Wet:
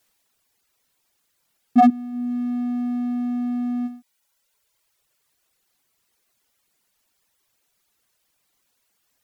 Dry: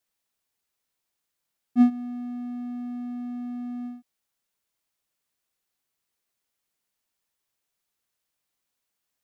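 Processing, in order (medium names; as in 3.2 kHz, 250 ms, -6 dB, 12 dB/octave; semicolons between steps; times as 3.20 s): sine folder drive 10 dB, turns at -8 dBFS; reverb removal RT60 1.2 s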